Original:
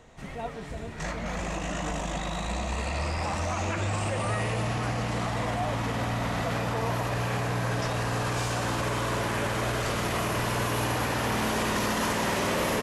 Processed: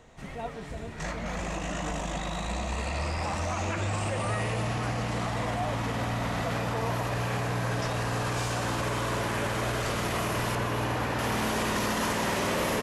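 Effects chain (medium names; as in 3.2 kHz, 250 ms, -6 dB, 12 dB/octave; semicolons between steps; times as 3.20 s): 10.55–11.19 s: treble shelf 4.7 kHz -9.5 dB; trim -1 dB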